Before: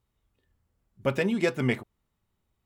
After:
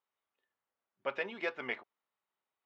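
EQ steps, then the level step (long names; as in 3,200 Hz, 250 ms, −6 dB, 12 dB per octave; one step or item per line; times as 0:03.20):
high-pass filter 700 Hz 12 dB per octave
Bessel low-pass filter 3,200 Hz, order 4
high-frequency loss of the air 64 metres
−3.5 dB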